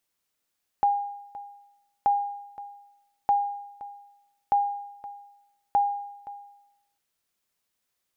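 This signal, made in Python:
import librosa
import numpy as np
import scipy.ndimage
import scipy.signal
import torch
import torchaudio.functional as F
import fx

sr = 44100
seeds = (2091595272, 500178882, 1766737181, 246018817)

y = fx.sonar_ping(sr, hz=811.0, decay_s=0.89, every_s=1.23, pings=5, echo_s=0.52, echo_db=-17.5, level_db=-15.5)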